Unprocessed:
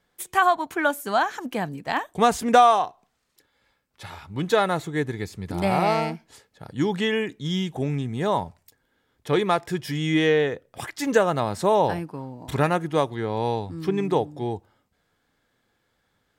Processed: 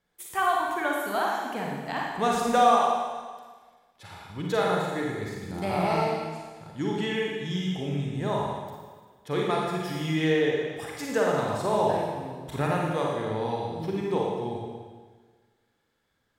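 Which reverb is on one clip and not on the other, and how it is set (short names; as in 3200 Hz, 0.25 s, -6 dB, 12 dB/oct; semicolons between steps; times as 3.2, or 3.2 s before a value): Schroeder reverb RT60 1.5 s, DRR -2.5 dB; gain -8 dB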